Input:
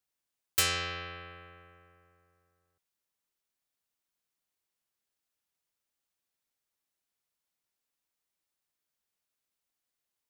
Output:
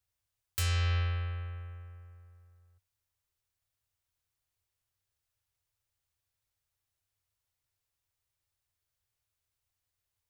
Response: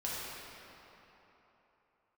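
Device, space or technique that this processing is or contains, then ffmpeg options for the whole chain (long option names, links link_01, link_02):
car stereo with a boomy subwoofer: -af "lowshelf=frequency=140:width_type=q:width=3:gain=12.5,alimiter=limit=-22.5dB:level=0:latency=1"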